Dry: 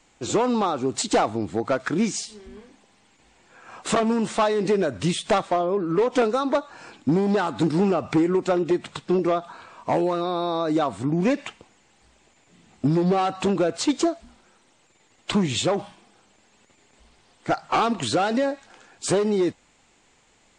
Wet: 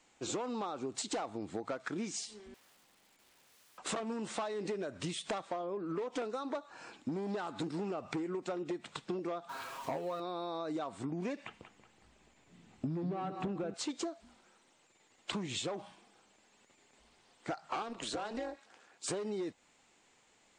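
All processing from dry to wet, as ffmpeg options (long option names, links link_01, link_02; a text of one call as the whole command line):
ffmpeg -i in.wav -filter_complex "[0:a]asettb=1/sr,asplit=3[link_01][link_02][link_03];[link_01]atrim=end=2.544[link_04];[link_02]atrim=start=2.54:end=3.78,asetpts=PTS-STARTPTS,afade=type=in:duration=0.004:curve=qsin,afade=type=out:start_time=1.236:duration=0.004:curve=qsin,equalizer=frequency=5900:width=3.9:gain=-7,acompressor=threshold=-47dB:ratio=3:attack=3.2:release=140:knee=1:detection=peak,aeval=exprs='(mod(473*val(0)+1,2)-1)/473':channel_layout=same[link_05];[link_03]atrim=start=3.776[link_06];[link_04][link_05]acrossfade=duration=0.004:curve1=hsin:curve2=qsin[link_07];[link_07][link_06]acrossfade=duration=0.004:curve1=qsin:curve2=hsin,asettb=1/sr,asplit=3[link_08][link_09][link_10];[link_08]atrim=end=9.494[link_11];[link_09]atrim=start=9.49:end=10.2,asetpts=PTS-STARTPTS,afade=type=in:duration=0.004:curve=qsin,afade=type=out:start_time=0.706:duration=0.004:curve=qsin,aeval=exprs='val(0)+0.5*0.0126*sgn(val(0))':channel_layout=same,aecho=1:1:7.4:0.66,atrim=end_sample=31311[link_12];[link_10]atrim=start=10.196[link_13];[link_11][link_12]acrossfade=duration=0.004:curve1=hsin:curve2=qsin[link_14];[link_14][link_13]acrossfade=duration=0.004:curve1=qsin:curve2=hsin,asettb=1/sr,asplit=3[link_15][link_16][link_17];[link_15]atrim=end=11.444[link_18];[link_16]atrim=start=11.44:end=13.74,asetpts=PTS-STARTPTS,afade=type=in:duration=0.004:curve=qsin,afade=type=out:start_time=2.296:duration=0.004:curve=qsin,acrossover=split=2700[link_19][link_20];[link_20]acompressor=threshold=-49dB:ratio=4:attack=1:release=60[link_21];[link_19][link_21]amix=inputs=2:normalize=0,bass=frequency=250:gain=9,treble=frequency=4000:gain=-3,asplit=2[link_22][link_23];[link_23]adelay=186,lowpass=frequency=3400:poles=1,volume=-11.5dB,asplit=2[link_24][link_25];[link_25]adelay=186,lowpass=frequency=3400:poles=1,volume=0.46,asplit=2[link_26][link_27];[link_27]adelay=186,lowpass=frequency=3400:poles=1,volume=0.46,asplit=2[link_28][link_29];[link_29]adelay=186,lowpass=frequency=3400:poles=1,volume=0.46,asplit=2[link_30][link_31];[link_31]adelay=186,lowpass=frequency=3400:poles=1,volume=0.46[link_32];[link_22][link_24][link_26][link_28][link_30][link_32]amix=inputs=6:normalize=0,atrim=end_sample=101430[link_33];[link_17]atrim=start=13.736[link_34];[link_18][link_33]acrossfade=duration=0.004:curve1=hsin:curve2=qsin[link_35];[link_35][link_34]acrossfade=duration=0.004:curve1=qsin:curve2=hsin,asettb=1/sr,asplit=3[link_36][link_37][link_38];[link_36]atrim=end=17.824[link_39];[link_37]atrim=start=17.82:end=19.08,asetpts=PTS-STARTPTS,afade=type=in:duration=0.004:curve=qsin,afade=type=out:start_time=1.256:duration=0.004:curve=qsin,highpass=190,tremolo=f=230:d=0.788[link_40];[link_38]atrim=start=19.076[link_41];[link_39][link_40]acrossfade=duration=0.004:curve1=hsin:curve2=qsin[link_42];[link_42][link_41]acrossfade=duration=0.004:curve1=qsin:curve2=hsin,lowshelf=frequency=120:gain=-11,acompressor=threshold=-28dB:ratio=6,volume=-7dB" out.wav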